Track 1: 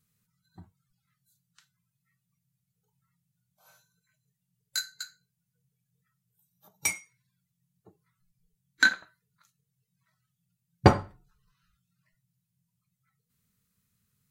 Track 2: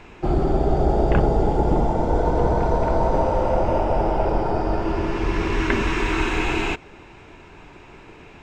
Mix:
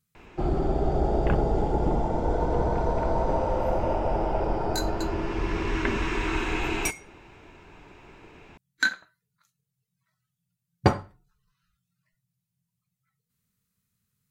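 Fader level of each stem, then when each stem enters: -2.5 dB, -5.5 dB; 0.00 s, 0.15 s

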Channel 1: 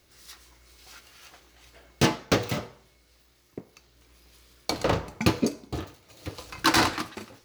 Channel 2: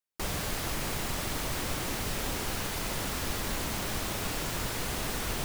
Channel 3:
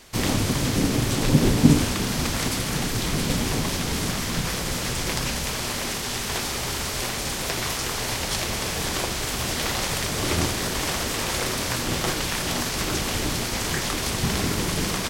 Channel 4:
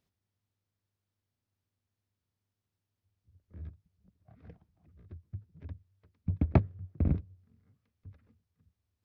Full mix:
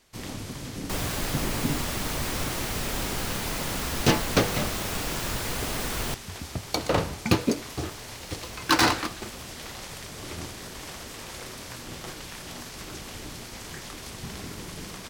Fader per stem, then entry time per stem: +0.5 dB, +2.5 dB, -13.5 dB, -10.5 dB; 2.05 s, 0.70 s, 0.00 s, 0.00 s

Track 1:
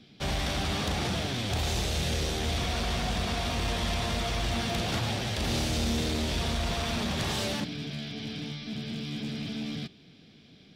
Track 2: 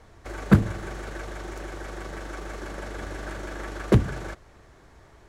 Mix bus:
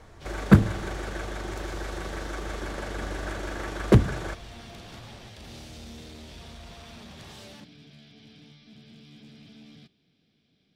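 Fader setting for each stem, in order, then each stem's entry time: -15.0 dB, +1.5 dB; 0.00 s, 0.00 s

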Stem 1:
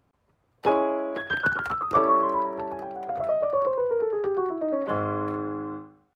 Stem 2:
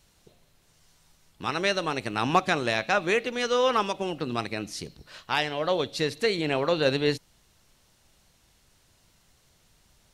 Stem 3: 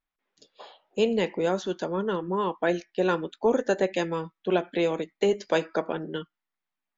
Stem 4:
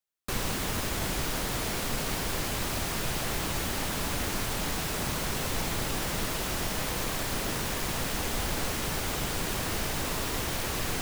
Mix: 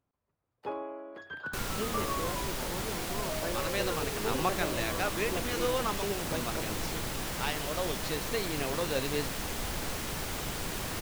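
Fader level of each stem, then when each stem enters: -15.0 dB, -9.0 dB, -13.5 dB, -4.5 dB; 0.00 s, 2.10 s, 0.80 s, 1.25 s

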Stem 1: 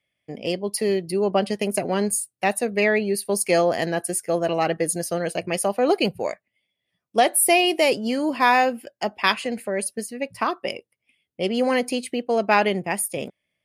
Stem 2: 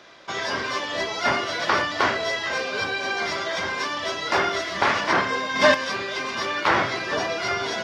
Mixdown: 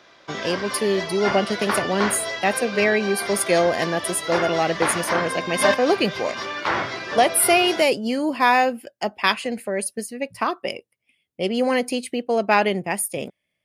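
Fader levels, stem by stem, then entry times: +0.5 dB, -3.0 dB; 0.00 s, 0.00 s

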